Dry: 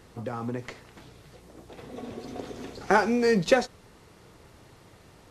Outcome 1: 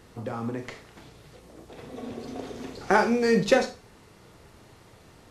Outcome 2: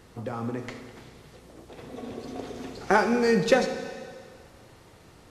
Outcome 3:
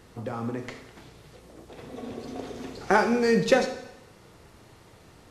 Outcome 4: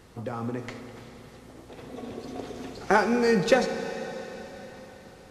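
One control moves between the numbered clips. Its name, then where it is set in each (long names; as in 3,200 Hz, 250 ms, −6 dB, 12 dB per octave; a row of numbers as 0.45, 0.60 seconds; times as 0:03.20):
four-comb reverb, RT60: 0.32, 1.9, 0.85, 4.4 seconds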